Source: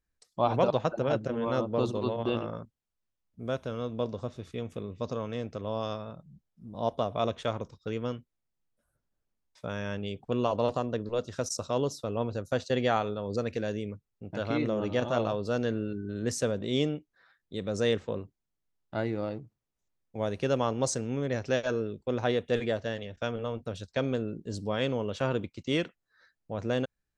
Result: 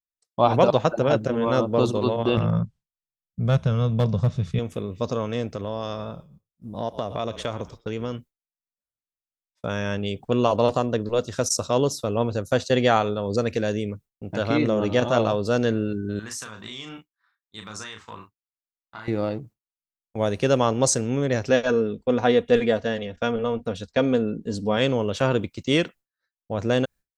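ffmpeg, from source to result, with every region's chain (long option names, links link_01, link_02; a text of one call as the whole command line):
ffmpeg -i in.wav -filter_complex "[0:a]asettb=1/sr,asplit=3[link_01][link_02][link_03];[link_01]atrim=end=2.374[link_04];[link_02]atrim=start=2.37:end=4.59,asetpts=PTS-STARTPTS,afade=type=in:duration=0.004:curve=qsin,afade=type=out:start_time=2.216:duration=0.004:curve=qsin,lowpass=6600,lowshelf=frequency=220:width_type=q:width=3:gain=8.5,asoftclip=type=hard:threshold=-20.5dB[link_05];[link_03]atrim=start=4.586[link_06];[link_04][link_05]acrossfade=duration=0.004:curve1=hsin:curve2=qsin[link_07];[link_07][link_06]acrossfade=duration=0.004:curve1=qsin:curve2=hsin,asettb=1/sr,asplit=3[link_08][link_09][link_10];[link_08]atrim=end=5.544[link_11];[link_09]atrim=start=5.54:end=8.15,asetpts=PTS-STARTPTS,afade=type=in:duration=0.004:curve=qsin,afade=type=out:start_time=2.606:duration=0.004:curve=qsin,asplit=4[link_12][link_13][link_14][link_15];[link_13]adelay=115,afreqshift=-41,volume=-21dB[link_16];[link_14]adelay=230,afreqshift=-82,volume=-30.1dB[link_17];[link_15]adelay=345,afreqshift=-123,volume=-39.2dB[link_18];[link_12][link_16][link_17][link_18]amix=inputs=4:normalize=0,atrim=end_sample=115101,acompressor=threshold=-32dB:ratio=3:attack=3.2:release=140:knee=1:detection=peak[link_19];[link_10]atrim=start=8.146[link_20];[link_11][link_19]acrossfade=duration=0.004:curve1=hsin:curve2=qsin[link_21];[link_21][link_20]acrossfade=duration=0.004:curve1=qsin:curve2=hsin,asettb=1/sr,asplit=3[link_22][link_23][link_24];[link_22]atrim=end=16.194[link_25];[link_23]atrim=start=16.19:end=19.08,asetpts=PTS-STARTPTS,afade=type=in:duration=0.004:curve=qsin,afade=type=out:start_time=2.886:duration=0.004:curve=qsin,lowshelf=frequency=750:width_type=q:width=3:gain=-11,acompressor=threshold=-41dB:ratio=12:attack=3.2:release=140:knee=1:detection=peak,asplit=2[link_26][link_27];[link_27]adelay=37,volume=-5dB[link_28];[link_26][link_28]amix=inputs=2:normalize=0,atrim=end_sample=127449[link_29];[link_24]atrim=start=19.076[link_30];[link_25][link_29]acrossfade=duration=0.004:curve1=hsin:curve2=qsin[link_31];[link_31][link_30]acrossfade=duration=0.004:curve1=qsin:curve2=hsin,asettb=1/sr,asplit=3[link_32][link_33][link_34];[link_32]atrim=end=21.504[link_35];[link_33]atrim=start=21.5:end=24.77,asetpts=PTS-STARTPTS,afade=type=in:duration=0.004:curve=qsin,afade=type=out:start_time=3.266:duration=0.004:curve=qsin,lowpass=frequency=3400:poles=1,aecho=1:1:4.2:0.44,atrim=end_sample=144207[link_36];[link_34]atrim=start=24.766[link_37];[link_35][link_36]acrossfade=duration=0.004:curve1=hsin:curve2=qsin[link_38];[link_38][link_37]acrossfade=duration=0.004:curve1=qsin:curve2=hsin,agate=range=-33dB:threshold=-46dB:ratio=3:detection=peak,highshelf=frequency=7800:gain=8,volume=7.5dB" out.wav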